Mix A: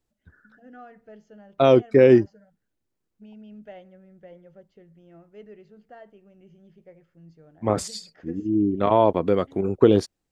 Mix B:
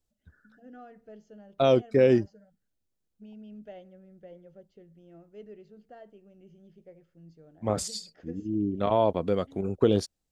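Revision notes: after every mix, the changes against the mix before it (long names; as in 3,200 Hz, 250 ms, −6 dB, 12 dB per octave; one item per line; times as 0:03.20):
second voice: add parametric band 340 Hz −7.5 dB 1.1 octaves
master: add octave-band graphic EQ 125/1,000/2,000 Hz −4/−6/−6 dB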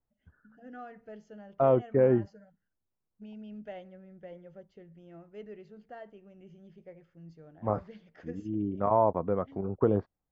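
second voice: add transistor ladder low-pass 1,500 Hz, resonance 20%
master: add octave-band graphic EQ 125/1,000/2,000 Hz +4/+6/+6 dB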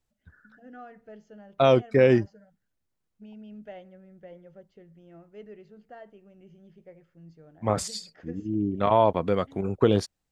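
second voice: remove transistor ladder low-pass 1,500 Hz, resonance 20%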